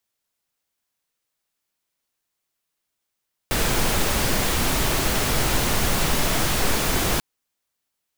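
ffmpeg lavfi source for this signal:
-f lavfi -i "anoisesrc=c=pink:a=0.457:d=3.69:r=44100:seed=1"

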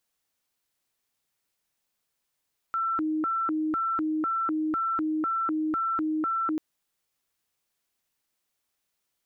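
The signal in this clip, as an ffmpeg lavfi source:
-f lavfi -i "aevalsrc='0.0596*sin(2*PI*(825.5*t+514.5/2*(0.5-abs(mod(2*t,1)-0.5))))':d=3.84:s=44100"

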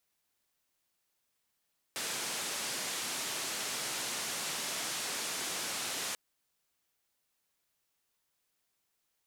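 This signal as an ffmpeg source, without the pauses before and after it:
-f lavfi -i "anoisesrc=c=white:d=4.19:r=44100:seed=1,highpass=f=160,lowpass=f=8900,volume=-28.3dB"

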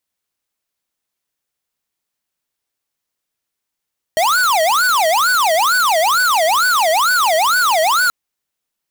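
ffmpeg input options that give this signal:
-f lavfi -i "aevalsrc='0.2*(2*lt(mod((1064*t-436/(2*PI*2.2)*sin(2*PI*2.2*t)),1),0.5)-1)':d=3.93:s=44100"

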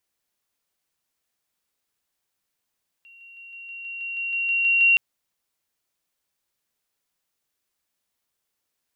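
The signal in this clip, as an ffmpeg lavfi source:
-f lavfi -i "aevalsrc='pow(10,(-46.5+3*floor(t/0.16))/20)*sin(2*PI*2750*t)':d=1.92:s=44100"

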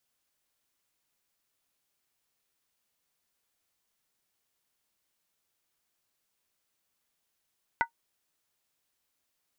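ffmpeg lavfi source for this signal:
-f lavfi -i "aevalsrc='0.106*pow(10,-3*t/0.1)*sin(2*PI*928*t)+0.0841*pow(10,-3*t/0.079)*sin(2*PI*1479.2*t)+0.0668*pow(10,-3*t/0.068)*sin(2*PI*1982.2*t)':d=0.63:s=44100"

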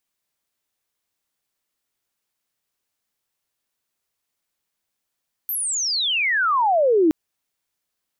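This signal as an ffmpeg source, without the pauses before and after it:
-f lavfi -i "aevalsrc='pow(10,(-22.5+10*t/1.62)/20)*sin(2*PI*13000*1.62/log(300/13000)*(exp(log(300/13000)*t/1.62)-1))':d=1.62:s=44100"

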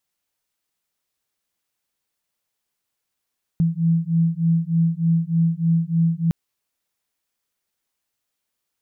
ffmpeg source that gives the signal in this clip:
-f lavfi -i "aevalsrc='0.106*(sin(2*PI*164*t)+sin(2*PI*167.3*t))':d=2.71:s=44100"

